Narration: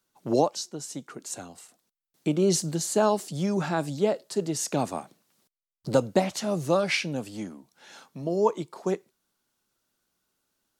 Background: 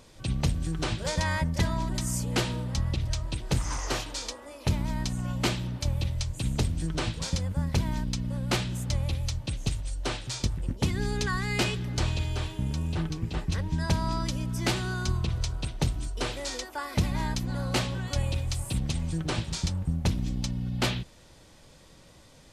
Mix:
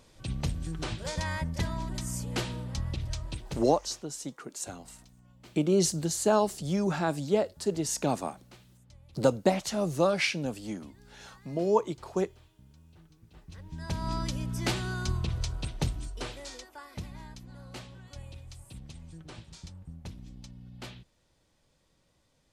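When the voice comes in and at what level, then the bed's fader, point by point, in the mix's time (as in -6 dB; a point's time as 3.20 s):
3.30 s, -1.5 dB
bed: 3.35 s -5 dB
4.04 s -27 dB
13.20 s -27 dB
14.12 s -2.5 dB
15.80 s -2.5 dB
17.29 s -16.5 dB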